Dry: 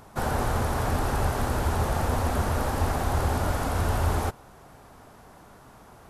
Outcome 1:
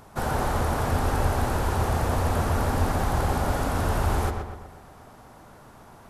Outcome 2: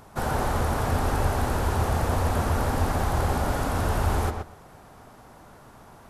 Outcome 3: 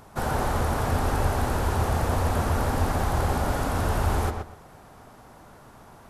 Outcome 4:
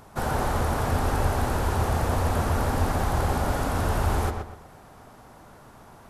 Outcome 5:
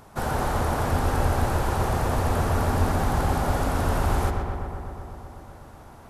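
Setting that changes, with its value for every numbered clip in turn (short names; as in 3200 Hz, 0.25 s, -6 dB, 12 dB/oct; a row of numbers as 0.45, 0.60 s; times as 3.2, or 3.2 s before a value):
darkening echo, feedback: 51, 16, 23, 34, 79%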